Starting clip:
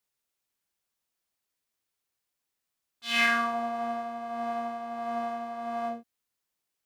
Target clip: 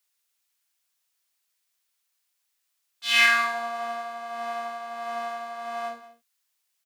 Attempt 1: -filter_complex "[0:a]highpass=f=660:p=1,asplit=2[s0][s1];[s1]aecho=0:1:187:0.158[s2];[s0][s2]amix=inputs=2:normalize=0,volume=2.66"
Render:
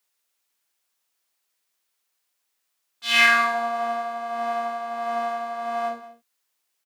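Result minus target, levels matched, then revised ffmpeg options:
500 Hz band +3.5 dB
-filter_complex "[0:a]highpass=f=1800:p=1,asplit=2[s0][s1];[s1]aecho=0:1:187:0.158[s2];[s0][s2]amix=inputs=2:normalize=0,volume=2.66"

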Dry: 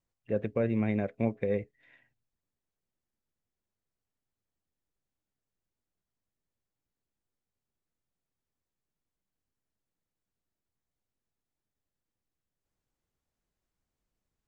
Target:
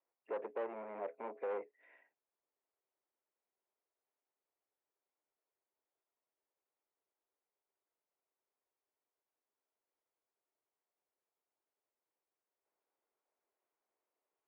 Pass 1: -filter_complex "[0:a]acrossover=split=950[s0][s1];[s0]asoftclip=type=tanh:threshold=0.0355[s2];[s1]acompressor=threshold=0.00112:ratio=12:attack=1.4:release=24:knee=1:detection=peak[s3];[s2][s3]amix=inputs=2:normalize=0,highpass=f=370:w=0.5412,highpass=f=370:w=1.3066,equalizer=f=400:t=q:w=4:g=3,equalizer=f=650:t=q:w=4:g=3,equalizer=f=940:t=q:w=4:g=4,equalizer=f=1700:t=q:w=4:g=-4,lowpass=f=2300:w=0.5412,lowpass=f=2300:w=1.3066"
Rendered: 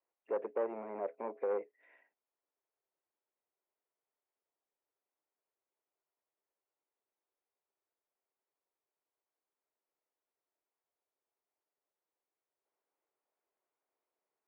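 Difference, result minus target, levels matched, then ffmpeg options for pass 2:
saturation: distortion -4 dB
-filter_complex "[0:a]acrossover=split=950[s0][s1];[s0]asoftclip=type=tanh:threshold=0.015[s2];[s1]acompressor=threshold=0.00112:ratio=12:attack=1.4:release=24:knee=1:detection=peak[s3];[s2][s3]amix=inputs=2:normalize=0,highpass=f=370:w=0.5412,highpass=f=370:w=1.3066,equalizer=f=400:t=q:w=4:g=3,equalizer=f=650:t=q:w=4:g=3,equalizer=f=940:t=q:w=4:g=4,equalizer=f=1700:t=q:w=4:g=-4,lowpass=f=2300:w=0.5412,lowpass=f=2300:w=1.3066"

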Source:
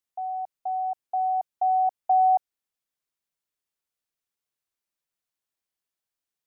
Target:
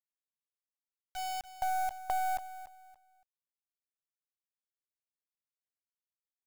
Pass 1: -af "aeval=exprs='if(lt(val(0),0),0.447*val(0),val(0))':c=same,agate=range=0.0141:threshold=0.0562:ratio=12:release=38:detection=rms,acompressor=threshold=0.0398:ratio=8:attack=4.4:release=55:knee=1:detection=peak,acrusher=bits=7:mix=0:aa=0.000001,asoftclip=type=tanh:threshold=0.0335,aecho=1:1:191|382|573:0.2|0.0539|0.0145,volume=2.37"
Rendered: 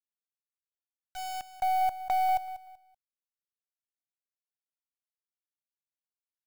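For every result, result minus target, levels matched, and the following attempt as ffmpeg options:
compression: peak gain reduction -7 dB; echo 95 ms early
-af "aeval=exprs='if(lt(val(0),0),0.447*val(0),val(0))':c=same,agate=range=0.0141:threshold=0.0562:ratio=12:release=38:detection=rms,acompressor=threshold=0.0158:ratio=8:attack=4.4:release=55:knee=1:detection=peak,acrusher=bits=7:mix=0:aa=0.000001,asoftclip=type=tanh:threshold=0.0335,aecho=1:1:191|382|573:0.2|0.0539|0.0145,volume=2.37"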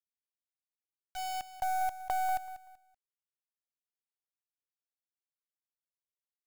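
echo 95 ms early
-af "aeval=exprs='if(lt(val(0),0),0.447*val(0),val(0))':c=same,agate=range=0.0141:threshold=0.0562:ratio=12:release=38:detection=rms,acompressor=threshold=0.0158:ratio=8:attack=4.4:release=55:knee=1:detection=peak,acrusher=bits=7:mix=0:aa=0.000001,asoftclip=type=tanh:threshold=0.0335,aecho=1:1:286|572|858:0.2|0.0539|0.0145,volume=2.37"

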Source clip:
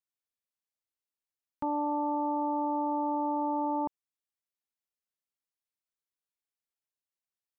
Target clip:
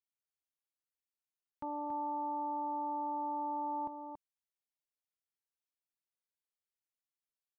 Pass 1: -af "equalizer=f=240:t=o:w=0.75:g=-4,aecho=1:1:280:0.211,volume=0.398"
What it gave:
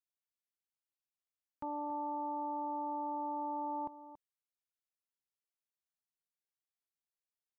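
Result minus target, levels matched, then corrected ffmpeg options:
echo-to-direct -7 dB
-af "equalizer=f=240:t=o:w=0.75:g=-4,aecho=1:1:280:0.473,volume=0.398"

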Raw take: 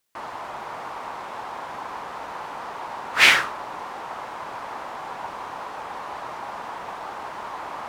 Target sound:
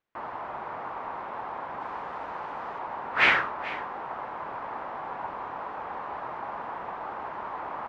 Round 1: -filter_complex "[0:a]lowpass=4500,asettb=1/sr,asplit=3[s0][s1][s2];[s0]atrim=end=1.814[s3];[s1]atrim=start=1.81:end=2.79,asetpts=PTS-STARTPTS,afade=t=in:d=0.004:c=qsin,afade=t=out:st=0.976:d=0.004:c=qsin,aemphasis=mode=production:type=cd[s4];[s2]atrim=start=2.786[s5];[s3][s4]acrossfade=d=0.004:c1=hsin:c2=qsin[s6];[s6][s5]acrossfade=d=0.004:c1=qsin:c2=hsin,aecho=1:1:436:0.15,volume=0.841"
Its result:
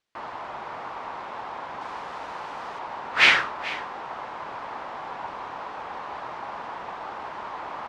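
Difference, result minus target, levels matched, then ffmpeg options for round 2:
4 kHz band +5.5 dB
-filter_complex "[0:a]lowpass=1900,asettb=1/sr,asplit=3[s0][s1][s2];[s0]atrim=end=1.814[s3];[s1]atrim=start=1.81:end=2.79,asetpts=PTS-STARTPTS,afade=t=in:d=0.004:c=qsin,afade=t=out:st=0.976:d=0.004:c=qsin,aemphasis=mode=production:type=cd[s4];[s2]atrim=start=2.786[s5];[s3][s4]acrossfade=d=0.004:c1=hsin:c2=qsin[s6];[s6][s5]acrossfade=d=0.004:c1=qsin:c2=hsin,aecho=1:1:436:0.15,volume=0.841"

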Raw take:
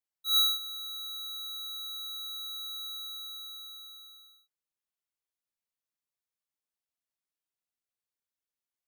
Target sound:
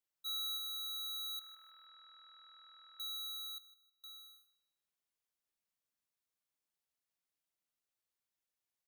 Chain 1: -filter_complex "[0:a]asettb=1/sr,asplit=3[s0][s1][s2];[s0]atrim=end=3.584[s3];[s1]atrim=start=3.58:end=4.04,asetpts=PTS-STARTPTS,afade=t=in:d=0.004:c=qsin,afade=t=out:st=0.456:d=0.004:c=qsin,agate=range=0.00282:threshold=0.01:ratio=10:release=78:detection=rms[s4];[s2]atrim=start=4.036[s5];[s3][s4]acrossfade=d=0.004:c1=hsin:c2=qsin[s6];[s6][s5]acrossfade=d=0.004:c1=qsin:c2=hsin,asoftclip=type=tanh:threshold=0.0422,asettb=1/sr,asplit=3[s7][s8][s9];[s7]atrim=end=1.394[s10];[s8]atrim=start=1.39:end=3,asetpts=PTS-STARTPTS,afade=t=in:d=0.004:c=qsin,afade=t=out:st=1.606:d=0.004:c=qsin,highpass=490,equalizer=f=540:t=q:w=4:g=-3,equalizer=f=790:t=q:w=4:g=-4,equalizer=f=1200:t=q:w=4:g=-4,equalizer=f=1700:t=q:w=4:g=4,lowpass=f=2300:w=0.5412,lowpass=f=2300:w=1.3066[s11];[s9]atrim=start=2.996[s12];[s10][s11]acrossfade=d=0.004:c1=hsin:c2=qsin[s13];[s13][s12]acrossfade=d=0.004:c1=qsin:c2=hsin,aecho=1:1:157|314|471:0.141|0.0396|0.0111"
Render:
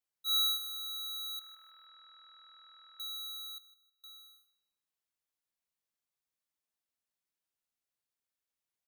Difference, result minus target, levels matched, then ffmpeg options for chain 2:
saturation: distortion -9 dB
-filter_complex "[0:a]asettb=1/sr,asplit=3[s0][s1][s2];[s0]atrim=end=3.584[s3];[s1]atrim=start=3.58:end=4.04,asetpts=PTS-STARTPTS,afade=t=in:d=0.004:c=qsin,afade=t=out:st=0.456:d=0.004:c=qsin,agate=range=0.00282:threshold=0.01:ratio=10:release=78:detection=rms[s4];[s2]atrim=start=4.036[s5];[s3][s4]acrossfade=d=0.004:c1=hsin:c2=qsin[s6];[s6][s5]acrossfade=d=0.004:c1=qsin:c2=hsin,asoftclip=type=tanh:threshold=0.0112,asettb=1/sr,asplit=3[s7][s8][s9];[s7]atrim=end=1.394[s10];[s8]atrim=start=1.39:end=3,asetpts=PTS-STARTPTS,afade=t=in:d=0.004:c=qsin,afade=t=out:st=1.606:d=0.004:c=qsin,highpass=490,equalizer=f=540:t=q:w=4:g=-3,equalizer=f=790:t=q:w=4:g=-4,equalizer=f=1200:t=q:w=4:g=-4,equalizer=f=1700:t=q:w=4:g=4,lowpass=f=2300:w=0.5412,lowpass=f=2300:w=1.3066[s11];[s9]atrim=start=2.996[s12];[s10][s11]acrossfade=d=0.004:c1=hsin:c2=qsin[s13];[s13][s12]acrossfade=d=0.004:c1=qsin:c2=hsin,aecho=1:1:157|314|471:0.141|0.0396|0.0111"

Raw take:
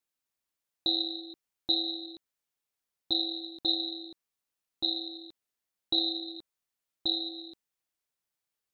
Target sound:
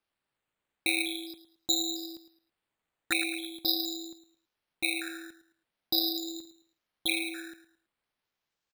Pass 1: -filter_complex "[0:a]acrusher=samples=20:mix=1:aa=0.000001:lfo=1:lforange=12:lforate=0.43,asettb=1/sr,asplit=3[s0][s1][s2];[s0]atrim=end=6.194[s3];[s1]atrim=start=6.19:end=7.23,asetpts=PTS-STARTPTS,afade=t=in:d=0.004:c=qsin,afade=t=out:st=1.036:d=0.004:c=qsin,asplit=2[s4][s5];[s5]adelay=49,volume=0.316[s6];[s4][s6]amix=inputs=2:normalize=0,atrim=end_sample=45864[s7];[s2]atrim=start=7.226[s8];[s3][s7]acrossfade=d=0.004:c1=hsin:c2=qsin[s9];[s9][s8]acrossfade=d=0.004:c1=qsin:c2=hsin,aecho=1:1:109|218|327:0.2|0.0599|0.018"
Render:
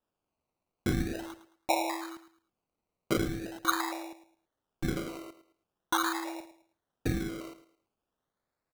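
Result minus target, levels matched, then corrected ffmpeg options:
decimation with a swept rate: distortion +4 dB
-filter_complex "[0:a]acrusher=samples=6:mix=1:aa=0.000001:lfo=1:lforange=3.6:lforate=0.43,asettb=1/sr,asplit=3[s0][s1][s2];[s0]atrim=end=6.194[s3];[s1]atrim=start=6.19:end=7.23,asetpts=PTS-STARTPTS,afade=t=in:d=0.004:c=qsin,afade=t=out:st=1.036:d=0.004:c=qsin,asplit=2[s4][s5];[s5]adelay=49,volume=0.316[s6];[s4][s6]amix=inputs=2:normalize=0,atrim=end_sample=45864[s7];[s2]atrim=start=7.226[s8];[s3][s7]acrossfade=d=0.004:c1=hsin:c2=qsin[s9];[s9][s8]acrossfade=d=0.004:c1=qsin:c2=hsin,aecho=1:1:109|218|327:0.2|0.0599|0.018"

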